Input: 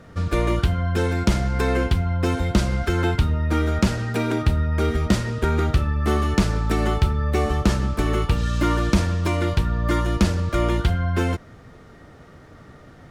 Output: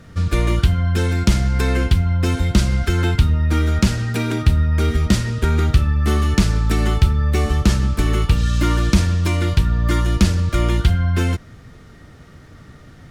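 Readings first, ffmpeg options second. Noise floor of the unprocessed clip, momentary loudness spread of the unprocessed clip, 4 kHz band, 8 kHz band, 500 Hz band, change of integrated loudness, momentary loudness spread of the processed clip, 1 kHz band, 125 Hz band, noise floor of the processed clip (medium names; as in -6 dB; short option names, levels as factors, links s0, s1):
-46 dBFS, 2 LU, +4.5 dB, +5.5 dB, -1.5 dB, +4.0 dB, 2 LU, -1.0 dB, +5.0 dB, -43 dBFS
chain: -af "equalizer=f=660:w=0.47:g=-9,volume=2"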